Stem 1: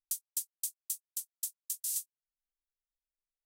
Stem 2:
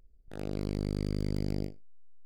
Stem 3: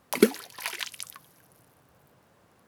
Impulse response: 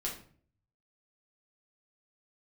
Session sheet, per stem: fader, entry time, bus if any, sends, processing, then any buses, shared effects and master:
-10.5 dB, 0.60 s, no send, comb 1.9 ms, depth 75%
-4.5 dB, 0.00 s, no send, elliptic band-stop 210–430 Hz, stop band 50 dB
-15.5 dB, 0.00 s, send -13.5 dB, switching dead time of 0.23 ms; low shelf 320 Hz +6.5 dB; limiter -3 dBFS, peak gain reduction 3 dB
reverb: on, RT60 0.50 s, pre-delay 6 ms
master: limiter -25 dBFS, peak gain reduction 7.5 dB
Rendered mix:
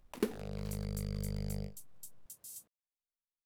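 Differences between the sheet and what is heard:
stem 1 -10.5 dB -> -16.5 dB; master: missing limiter -25 dBFS, peak gain reduction 7.5 dB

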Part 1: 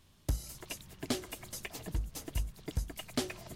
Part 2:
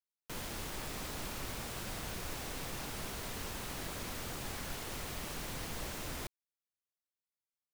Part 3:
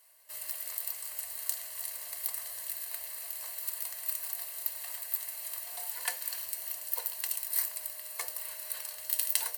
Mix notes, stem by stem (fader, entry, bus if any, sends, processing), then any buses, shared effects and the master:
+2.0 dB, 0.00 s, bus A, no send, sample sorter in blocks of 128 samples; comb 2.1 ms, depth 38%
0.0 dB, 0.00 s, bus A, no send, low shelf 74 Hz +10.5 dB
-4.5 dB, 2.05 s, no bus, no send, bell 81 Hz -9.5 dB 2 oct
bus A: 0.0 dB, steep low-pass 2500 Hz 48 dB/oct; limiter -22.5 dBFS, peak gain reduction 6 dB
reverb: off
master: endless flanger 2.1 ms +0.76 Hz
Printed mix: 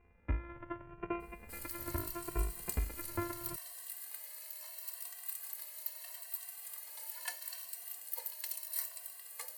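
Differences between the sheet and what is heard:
stem 2: muted; stem 3: entry 2.05 s -> 1.20 s

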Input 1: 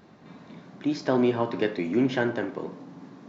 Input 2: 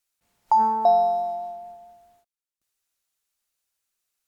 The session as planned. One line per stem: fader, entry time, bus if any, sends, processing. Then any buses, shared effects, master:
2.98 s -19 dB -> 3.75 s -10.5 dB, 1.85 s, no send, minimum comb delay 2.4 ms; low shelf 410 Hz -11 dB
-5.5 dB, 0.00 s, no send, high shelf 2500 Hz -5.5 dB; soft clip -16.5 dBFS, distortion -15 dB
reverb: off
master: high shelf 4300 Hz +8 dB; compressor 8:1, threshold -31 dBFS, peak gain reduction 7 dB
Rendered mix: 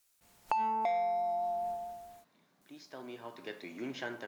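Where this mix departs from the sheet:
stem 1: missing minimum comb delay 2.4 ms; stem 2 -5.5 dB -> +6.0 dB

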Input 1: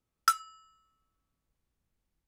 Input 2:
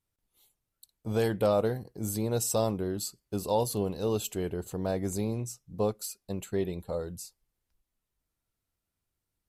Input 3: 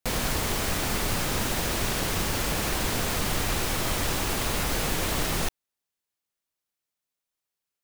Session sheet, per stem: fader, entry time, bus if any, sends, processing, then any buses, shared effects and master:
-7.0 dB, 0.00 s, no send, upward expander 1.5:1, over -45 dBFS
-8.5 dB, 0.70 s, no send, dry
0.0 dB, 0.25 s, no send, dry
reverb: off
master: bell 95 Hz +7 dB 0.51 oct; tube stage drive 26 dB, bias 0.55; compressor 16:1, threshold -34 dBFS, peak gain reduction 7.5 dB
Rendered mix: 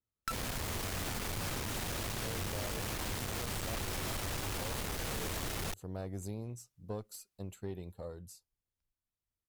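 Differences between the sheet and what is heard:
stem 1 -7.0 dB -> +3.5 dB; stem 2: entry 0.70 s -> 1.10 s

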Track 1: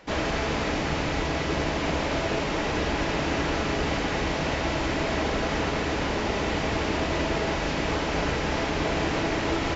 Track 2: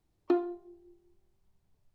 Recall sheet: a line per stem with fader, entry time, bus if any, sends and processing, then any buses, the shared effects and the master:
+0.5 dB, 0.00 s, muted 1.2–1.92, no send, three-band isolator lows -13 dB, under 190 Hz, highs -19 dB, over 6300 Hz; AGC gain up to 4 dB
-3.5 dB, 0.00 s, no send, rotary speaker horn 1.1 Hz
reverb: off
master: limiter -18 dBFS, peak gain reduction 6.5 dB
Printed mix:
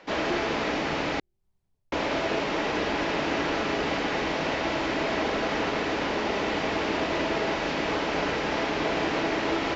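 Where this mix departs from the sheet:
stem 1: missing AGC gain up to 4 dB; master: missing limiter -18 dBFS, peak gain reduction 6.5 dB

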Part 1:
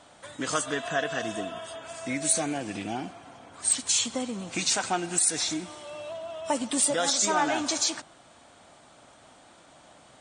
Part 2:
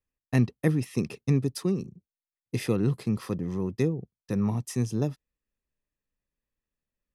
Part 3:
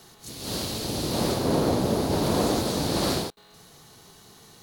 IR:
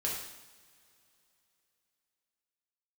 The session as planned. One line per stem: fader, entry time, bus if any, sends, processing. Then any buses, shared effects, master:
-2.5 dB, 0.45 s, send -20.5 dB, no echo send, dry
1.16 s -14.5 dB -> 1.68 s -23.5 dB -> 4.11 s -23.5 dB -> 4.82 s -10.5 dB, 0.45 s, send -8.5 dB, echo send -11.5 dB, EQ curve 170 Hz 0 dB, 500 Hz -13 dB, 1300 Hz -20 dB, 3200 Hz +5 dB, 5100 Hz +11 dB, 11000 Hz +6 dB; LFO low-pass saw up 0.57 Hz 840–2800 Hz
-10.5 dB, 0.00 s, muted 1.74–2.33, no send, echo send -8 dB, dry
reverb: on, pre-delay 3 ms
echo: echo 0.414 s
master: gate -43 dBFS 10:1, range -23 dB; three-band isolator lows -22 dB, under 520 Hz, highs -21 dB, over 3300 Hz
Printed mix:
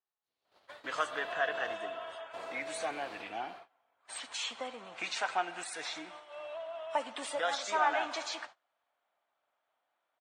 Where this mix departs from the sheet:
stem 2: muted; stem 3 -10.5 dB -> -18.0 dB

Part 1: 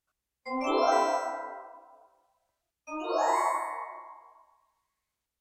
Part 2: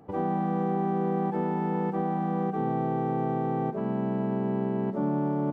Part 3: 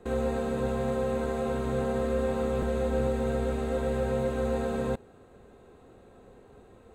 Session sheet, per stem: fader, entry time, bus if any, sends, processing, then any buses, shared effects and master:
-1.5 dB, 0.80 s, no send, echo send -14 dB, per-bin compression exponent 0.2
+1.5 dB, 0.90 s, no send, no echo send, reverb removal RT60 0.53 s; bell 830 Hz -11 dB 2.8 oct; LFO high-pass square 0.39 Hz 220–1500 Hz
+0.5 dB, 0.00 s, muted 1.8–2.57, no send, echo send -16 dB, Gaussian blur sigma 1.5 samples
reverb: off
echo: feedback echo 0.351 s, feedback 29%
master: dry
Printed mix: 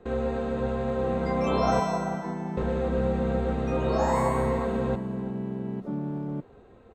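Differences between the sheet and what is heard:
stem 1: missing per-bin compression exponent 0.2; stem 2: missing LFO high-pass square 0.39 Hz 220–1500 Hz

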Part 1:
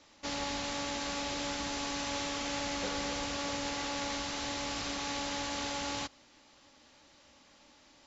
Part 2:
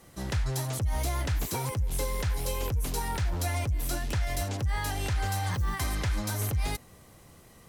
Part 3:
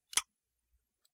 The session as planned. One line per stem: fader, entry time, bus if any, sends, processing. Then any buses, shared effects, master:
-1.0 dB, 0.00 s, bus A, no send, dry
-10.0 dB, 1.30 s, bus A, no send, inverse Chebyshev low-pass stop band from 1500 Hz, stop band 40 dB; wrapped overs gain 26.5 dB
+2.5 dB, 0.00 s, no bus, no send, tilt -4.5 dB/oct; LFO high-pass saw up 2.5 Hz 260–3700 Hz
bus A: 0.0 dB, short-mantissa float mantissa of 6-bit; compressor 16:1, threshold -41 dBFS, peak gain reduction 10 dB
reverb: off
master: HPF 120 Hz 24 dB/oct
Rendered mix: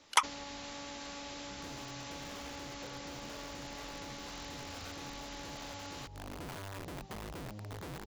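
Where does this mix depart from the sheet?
stem 3 +2.5 dB -> +11.0 dB; master: missing HPF 120 Hz 24 dB/oct

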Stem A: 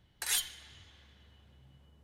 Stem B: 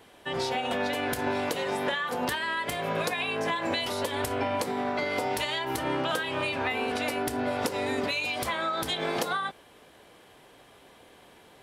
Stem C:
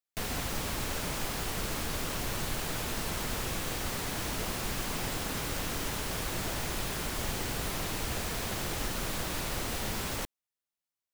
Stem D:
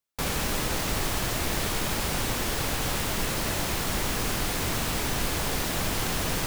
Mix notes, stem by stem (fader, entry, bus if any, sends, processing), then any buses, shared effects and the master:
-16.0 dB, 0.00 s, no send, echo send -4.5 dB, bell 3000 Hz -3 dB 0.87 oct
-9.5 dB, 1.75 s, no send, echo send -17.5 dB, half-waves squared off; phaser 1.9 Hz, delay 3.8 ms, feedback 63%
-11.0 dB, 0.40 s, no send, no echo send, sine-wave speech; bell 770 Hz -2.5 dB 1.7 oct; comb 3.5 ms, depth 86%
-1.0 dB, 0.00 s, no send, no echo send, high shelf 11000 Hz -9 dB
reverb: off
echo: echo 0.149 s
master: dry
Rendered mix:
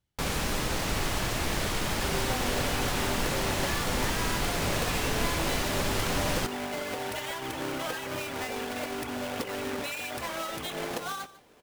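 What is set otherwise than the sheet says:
stem B: missing phaser 1.9 Hz, delay 3.8 ms, feedback 63%; stem C: entry 0.40 s -> 0.65 s

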